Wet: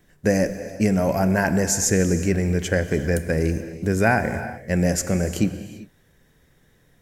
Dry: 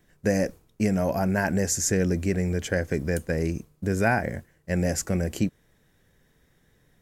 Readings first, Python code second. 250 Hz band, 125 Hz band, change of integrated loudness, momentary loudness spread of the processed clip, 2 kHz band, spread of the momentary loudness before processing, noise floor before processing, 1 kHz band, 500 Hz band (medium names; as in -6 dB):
+4.5 dB, +4.5 dB, +4.5 dB, 7 LU, +4.5 dB, 7 LU, -65 dBFS, +4.5 dB, +4.5 dB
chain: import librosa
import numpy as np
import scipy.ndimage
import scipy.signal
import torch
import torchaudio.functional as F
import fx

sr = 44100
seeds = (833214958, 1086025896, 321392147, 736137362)

y = fx.rev_gated(x, sr, seeds[0], gate_ms=420, shape='flat', drr_db=10.0)
y = F.gain(torch.from_numpy(y), 4.0).numpy()